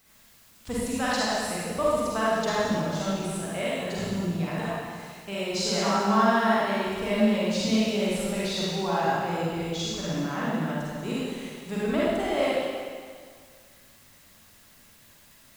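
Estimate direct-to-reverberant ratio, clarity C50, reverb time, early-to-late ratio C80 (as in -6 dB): -8.0 dB, -5.5 dB, 1.9 s, -2.0 dB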